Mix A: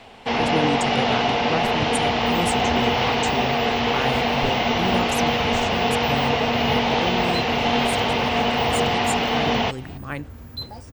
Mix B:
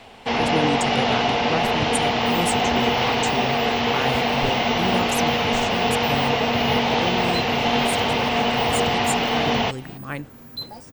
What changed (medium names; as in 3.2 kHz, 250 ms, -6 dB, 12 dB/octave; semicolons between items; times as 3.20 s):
second sound: add high-pass 130 Hz 24 dB/octave; master: add treble shelf 8.6 kHz +5.5 dB